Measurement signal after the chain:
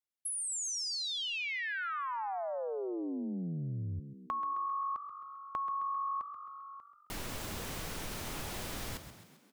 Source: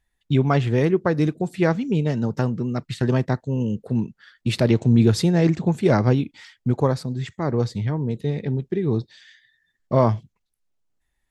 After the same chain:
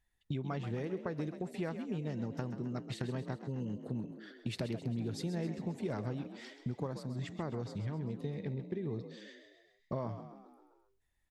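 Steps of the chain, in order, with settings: compressor 5:1, threshold -30 dBFS; on a send: frequency-shifting echo 0.132 s, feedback 55%, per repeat +47 Hz, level -11 dB; on the sum: gain -6 dB

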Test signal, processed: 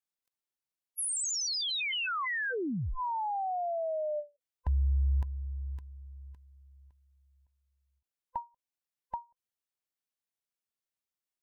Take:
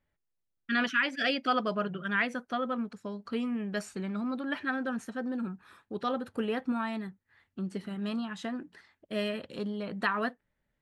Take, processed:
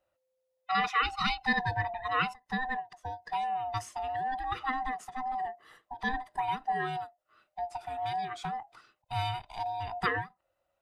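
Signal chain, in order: band-swap scrambler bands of 500 Hz; ending taper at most 280 dB/s

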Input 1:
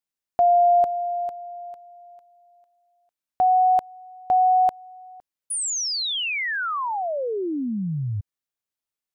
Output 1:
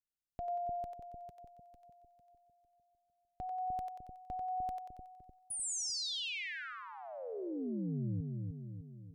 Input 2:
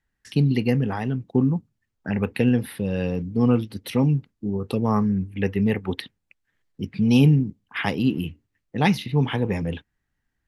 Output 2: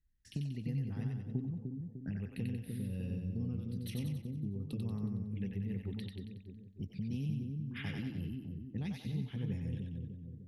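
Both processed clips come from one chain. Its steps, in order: passive tone stack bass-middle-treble 10-0-1; compressor 6:1, threshold -45 dBFS; split-band echo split 530 Hz, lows 0.301 s, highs 92 ms, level -3 dB; gain +8 dB

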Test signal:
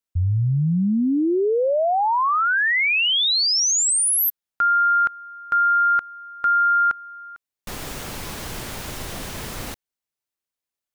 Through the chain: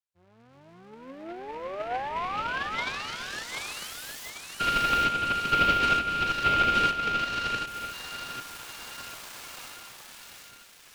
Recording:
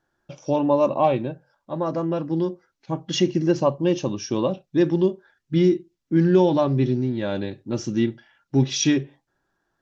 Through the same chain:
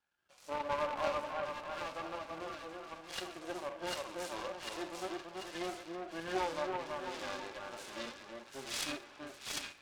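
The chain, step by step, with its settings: half-wave gain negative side -12 dB; HPF 1100 Hz 12 dB/oct; on a send: split-band echo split 1700 Hz, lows 0.332 s, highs 0.746 s, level -3.5 dB; on the sum: plate-style reverb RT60 1.1 s, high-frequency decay 0.5×, DRR 18 dB; in parallel at -3 dB: compressor, threshold -33 dBFS; on the sum: notch 1900 Hz, Q 8.6; flange 1.3 Hz, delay 0.8 ms, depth 3.4 ms, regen +61%; harmonic-percussive split percussive -17 dB; noise-modulated delay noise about 1200 Hz, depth 0.052 ms

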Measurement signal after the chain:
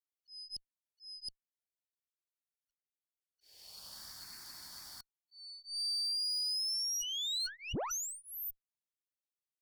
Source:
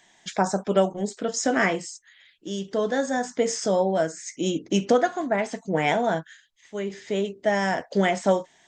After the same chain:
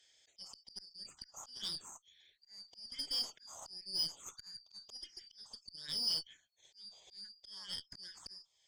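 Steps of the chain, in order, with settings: four-band scrambler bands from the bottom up 4321; auto swell 0.58 s; wow and flutter 15 cents; envelope phaser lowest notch 180 Hz, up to 2000 Hz, full sweep at -26.5 dBFS; added harmonics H 3 -26 dB, 5 -39 dB, 7 -42 dB, 8 -24 dB, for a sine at -16 dBFS; gain -7 dB

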